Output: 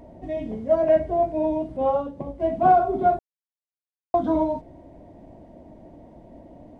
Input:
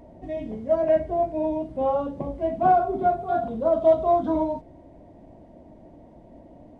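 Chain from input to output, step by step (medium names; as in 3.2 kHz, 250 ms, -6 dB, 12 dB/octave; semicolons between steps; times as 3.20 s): 1.77–2.40 s: upward expansion 1.5:1, over -34 dBFS; 3.19–4.14 s: mute; trim +2 dB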